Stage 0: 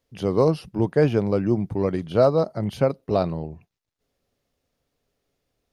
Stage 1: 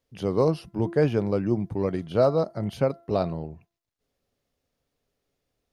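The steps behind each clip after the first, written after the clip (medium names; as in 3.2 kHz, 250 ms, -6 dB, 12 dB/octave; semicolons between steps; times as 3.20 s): de-hum 339.9 Hz, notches 6; trim -3 dB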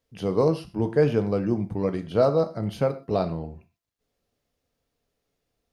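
gated-style reverb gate 150 ms falling, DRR 8.5 dB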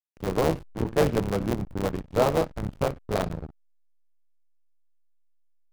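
cycle switcher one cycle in 3, muted; hysteresis with a dead band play -27.5 dBFS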